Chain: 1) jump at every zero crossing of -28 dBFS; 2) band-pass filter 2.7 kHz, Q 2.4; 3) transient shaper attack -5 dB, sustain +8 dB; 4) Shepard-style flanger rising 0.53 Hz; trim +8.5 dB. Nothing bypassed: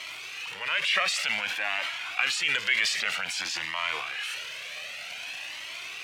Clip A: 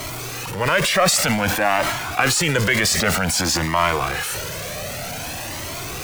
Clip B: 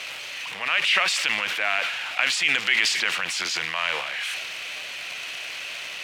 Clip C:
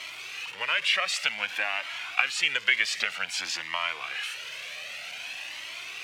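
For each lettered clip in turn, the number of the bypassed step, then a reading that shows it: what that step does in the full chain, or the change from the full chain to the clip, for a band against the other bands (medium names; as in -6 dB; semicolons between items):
2, 125 Hz band +17.0 dB; 4, 250 Hz band +2.5 dB; 3, 250 Hz band -2.5 dB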